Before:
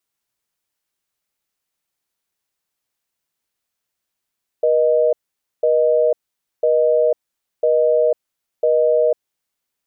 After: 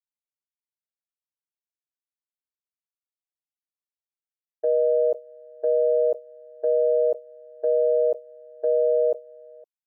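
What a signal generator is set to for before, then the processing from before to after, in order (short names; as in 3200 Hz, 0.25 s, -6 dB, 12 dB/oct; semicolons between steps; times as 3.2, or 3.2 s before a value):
call progress tone busy tone, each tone -15 dBFS 4.83 s
on a send: echo 0.512 s -11 dB; on the sum: expander -13 dBFS; dynamic EQ 660 Hz, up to -5 dB, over -27 dBFS, Q 1.3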